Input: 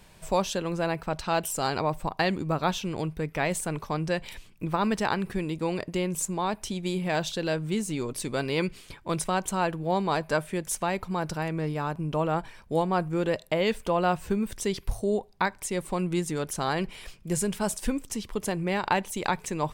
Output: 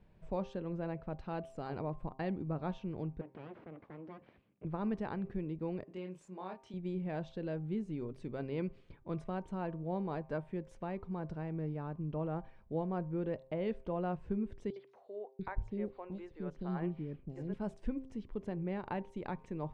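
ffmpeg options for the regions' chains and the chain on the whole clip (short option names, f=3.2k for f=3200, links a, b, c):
-filter_complex "[0:a]asettb=1/sr,asplit=3[a][b][c];[a]atrim=end=3.214[d];[b]atrim=start=3.21:end=4.65,asetpts=PTS-STARTPTS,afade=t=in:d=0.004:c=qsin,afade=t=out:st=1.436:d=0.004:c=qsin,acompressor=threshold=-31dB:ratio=2:attack=3.2:release=140:knee=1:detection=peak,aeval=exprs='abs(val(0))':c=same,highpass=160,lowpass=3k[e];[c]atrim=start=4.646[f];[d][e]acrossfade=d=0.004:c1=hsin:c2=qsin[g];[g][f]acrossfade=d=0.004:c1=qsin:c2=hsin,asettb=1/sr,asplit=3[h][i][j];[h]atrim=end=5.844[k];[i]atrim=start=5.84:end=6.74,asetpts=PTS-STARTPTS,afade=t=in:d=0.004:c=qsin,afade=t=out:st=0.896:d=0.004:c=qsin,highpass=f=680:p=1,asplit=2[l][m];[m]adelay=27,volume=-4dB[n];[l][n]amix=inputs=2:normalize=0,atrim=end_sample=39690[o];[j]atrim=start=6.736[p];[k][o]acrossfade=d=0.004:c1=hsin:c2=qsin[q];[q][p]acrossfade=d=0.004:c1=qsin:c2=hsin,asettb=1/sr,asplit=3[r][s][t];[r]atrim=end=14.704[u];[s]atrim=start=14.7:end=17.54,asetpts=PTS-STARTPTS,afade=t=in:d=0.004:c=qsin,afade=t=out:st=2.836:d=0.004:c=qsin,lowpass=4.7k,acrossover=split=440|3500[v][w][x];[w]adelay=60[y];[v]adelay=690[z];[z][y][x]amix=inputs=3:normalize=0,atrim=end_sample=125244[aa];[t]atrim=start=17.536[ab];[u][aa]acrossfade=d=0.004:c1=hsin:c2=qsin[ac];[ac][ab]acrossfade=d=0.004:c1=qsin:c2=hsin,lowpass=1.4k,equalizer=f=1.1k:w=0.71:g=-9,bandreject=f=131.9:t=h:w=4,bandreject=f=263.8:t=h:w=4,bandreject=f=395.7:t=h:w=4,bandreject=f=527.6:t=h:w=4,bandreject=f=659.5:t=h:w=4,bandreject=f=791.4:t=h:w=4,bandreject=f=923.3:t=h:w=4,bandreject=f=1.0552k:t=h:w=4,bandreject=f=1.1871k:t=h:w=4,volume=-7dB"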